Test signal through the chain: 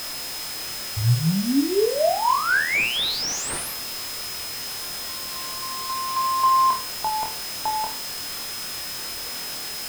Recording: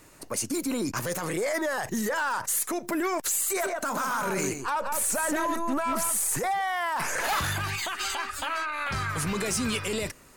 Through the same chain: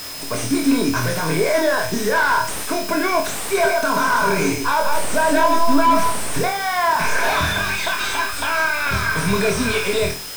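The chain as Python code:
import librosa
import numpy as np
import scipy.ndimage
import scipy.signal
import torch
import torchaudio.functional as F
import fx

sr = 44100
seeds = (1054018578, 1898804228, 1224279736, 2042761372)

p1 = fx.ripple_eq(x, sr, per_octave=1.6, db=11)
p2 = fx.dmg_noise_colour(p1, sr, seeds[0], colour='white', level_db=-41.0)
p3 = p2 + fx.room_flutter(p2, sr, wall_m=4.3, rt60_s=0.33, dry=0)
p4 = p3 + 10.0 ** (-40.0 / 20.0) * np.sin(2.0 * np.pi * 5100.0 * np.arange(len(p3)) / sr)
p5 = fx.slew_limit(p4, sr, full_power_hz=130.0)
y = p5 * librosa.db_to_amplitude(7.0)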